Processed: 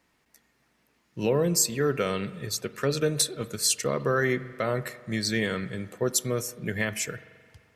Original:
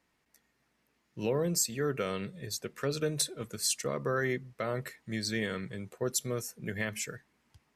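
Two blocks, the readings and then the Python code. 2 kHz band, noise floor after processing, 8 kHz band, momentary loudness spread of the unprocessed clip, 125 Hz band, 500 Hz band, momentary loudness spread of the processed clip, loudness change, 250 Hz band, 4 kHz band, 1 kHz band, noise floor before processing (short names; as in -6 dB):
+6.0 dB, -70 dBFS, +6.0 dB, 9 LU, +6.0 dB, +6.0 dB, 9 LU, +6.0 dB, +6.0 dB, +6.0 dB, +6.0 dB, -76 dBFS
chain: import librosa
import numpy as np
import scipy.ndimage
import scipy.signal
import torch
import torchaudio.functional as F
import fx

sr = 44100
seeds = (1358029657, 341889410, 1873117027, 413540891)

y = fx.rev_spring(x, sr, rt60_s=1.9, pass_ms=(43,), chirp_ms=75, drr_db=15.5)
y = y * 10.0 ** (6.0 / 20.0)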